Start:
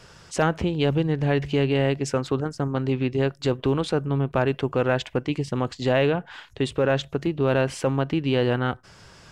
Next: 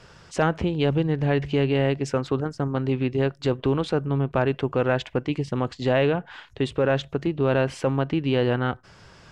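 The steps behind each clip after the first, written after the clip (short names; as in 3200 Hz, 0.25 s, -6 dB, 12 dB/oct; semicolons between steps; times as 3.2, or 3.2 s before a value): high shelf 7400 Hz -11.5 dB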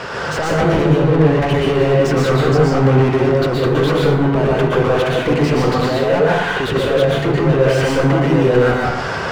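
negative-ratio compressor -25 dBFS, ratio -0.5; overdrive pedal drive 37 dB, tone 1200 Hz, clips at -9.5 dBFS; plate-style reverb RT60 0.91 s, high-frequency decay 0.6×, pre-delay 0.105 s, DRR -3.5 dB; gain -2 dB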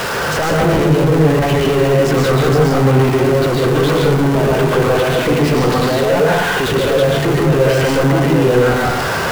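zero-crossing step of -17 dBFS; gain -1 dB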